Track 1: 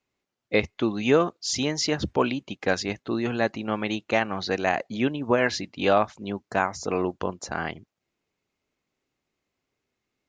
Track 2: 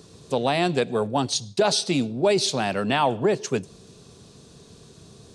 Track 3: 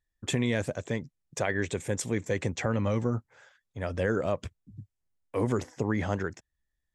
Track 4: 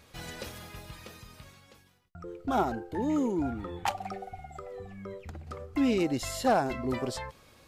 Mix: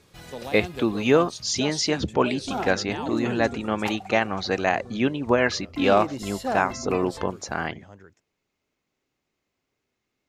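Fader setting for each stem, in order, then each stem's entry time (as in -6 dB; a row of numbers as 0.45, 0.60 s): +1.5, -13.5, -17.5, -2.5 dB; 0.00, 0.00, 1.80, 0.00 s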